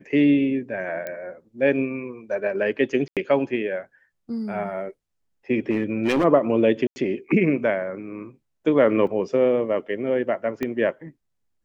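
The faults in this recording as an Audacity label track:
1.070000	1.070000	click −17 dBFS
3.080000	3.170000	drop-out 87 ms
5.700000	6.250000	clipping −16.5 dBFS
6.870000	6.960000	drop-out 90 ms
9.070000	9.070000	drop-out 2.8 ms
10.630000	10.630000	click −14 dBFS

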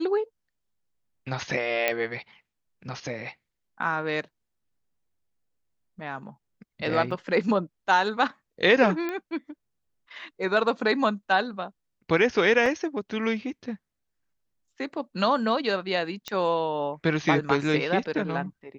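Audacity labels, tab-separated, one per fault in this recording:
1.880000	1.880000	click −9 dBFS
7.110000	7.110000	drop-out 3.5 ms
9.090000	9.090000	click −18 dBFS
12.660000	12.660000	drop-out 2 ms
16.280000	16.280000	click −16 dBFS

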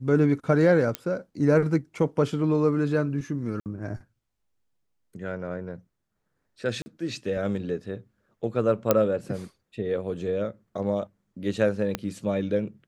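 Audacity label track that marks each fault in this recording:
0.950000	0.950000	click −11 dBFS
3.600000	3.660000	drop-out 58 ms
6.820000	6.860000	drop-out 40 ms
8.910000	8.910000	click −5 dBFS
11.950000	11.950000	click −12 dBFS

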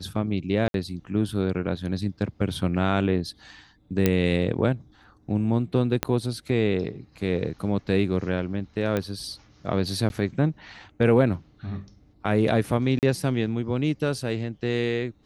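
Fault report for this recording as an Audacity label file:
0.680000	0.740000	drop-out 62 ms
4.060000	4.060000	click −6 dBFS
6.030000	6.030000	click −7 dBFS
8.970000	8.970000	click −13 dBFS
10.090000	10.100000	drop-out 11 ms
12.990000	13.030000	drop-out 38 ms

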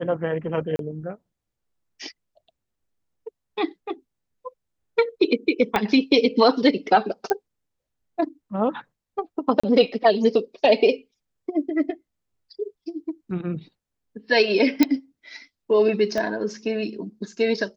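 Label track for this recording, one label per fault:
0.760000	0.790000	drop-out 32 ms
5.760000	5.760000	click −8 dBFS
7.300000	7.300000	click −11 dBFS
9.600000	9.630000	drop-out 35 ms
14.830000	14.830000	click −4 dBFS
16.180000	16.180000	click −14 dBFS

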